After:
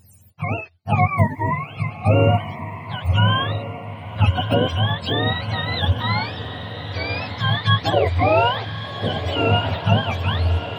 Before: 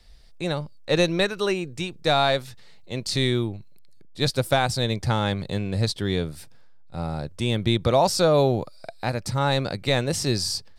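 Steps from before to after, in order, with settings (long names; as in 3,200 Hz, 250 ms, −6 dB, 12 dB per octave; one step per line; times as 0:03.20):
frequency axis turned over on the octave scale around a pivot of 620 Hz
feedback delay with all-pass diffusion 1,253 ms, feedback 61%, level −10 dB
level +3.5 dB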